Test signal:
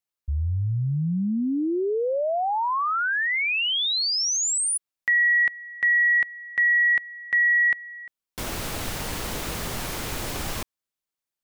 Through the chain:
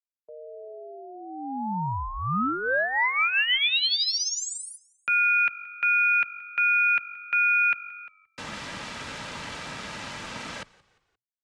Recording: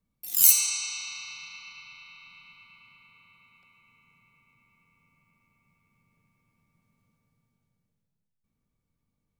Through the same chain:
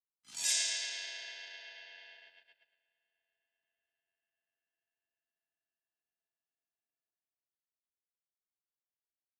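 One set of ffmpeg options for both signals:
-filter_complex "[0:a]highpass=f=630:p=1,aemphasis=mode=reproduction:type=75fm,agate=range=-24dB:threshold=-55dB:ratio=16:release=92:detection=peak,lowpass=f=8.6k:w=0.5412,lowpass=f=8.6k:w=1.3066,aecho=1:1:2.8:0.45,acontrast=30,aeval=exprs='val(0)*sin(2*PI*520*n/s)':c=same,afreqshift=20,asplit=2[a][b];[b]asplit=3[c][d][e];[c]adelay=175,afreqshift=-48,volume=-23dB[f];[d]adelay=350,afreqshift=-96,volume=-30.1dB[g];[e]adelay=525,afreqshift=-144,volume=-37.3dB[h];[f][g][h]amix=inputs=3:normalize=0[i];[a][i]amix=inputs=2:normalize=0,adynamicequalizer=threshold=0.0158:dfrequency=1800:dqfactor=0.7:tfrequency=1800:tqfactor=0.7:attack=5:release=100:ratio=0.375:range=3.5:mode=boostabove:tftype=highshelf,volume=-4dB"

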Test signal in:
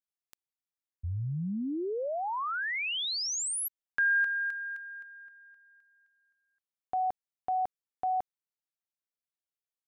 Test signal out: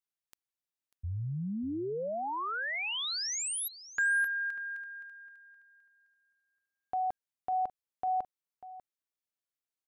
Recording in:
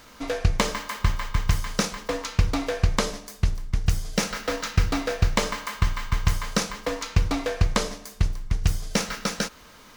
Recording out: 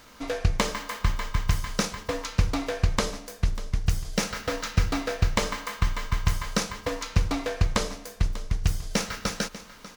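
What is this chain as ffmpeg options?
-af "aecho=1:1:593:0.168,volume=-2dB"

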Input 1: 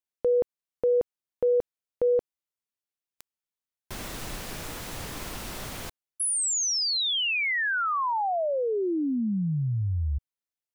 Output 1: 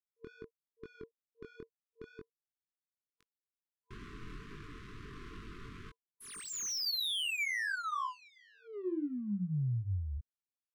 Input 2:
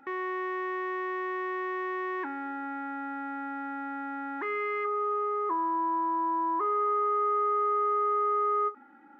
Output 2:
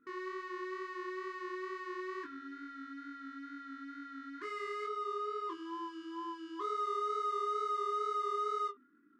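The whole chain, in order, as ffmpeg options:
-af "adynamicsmooth=sensitivity=6:basefreq=1.3k,flanger=delay=20:depth=4.9:speed=2.2,afftfilt=real='re*(1-between(b*sr/4096,460,1000))':imag='im*(1-between(b*sr/4096,460,1000))':win_size=4096:overlap=0.75,volume=-5.5dB"

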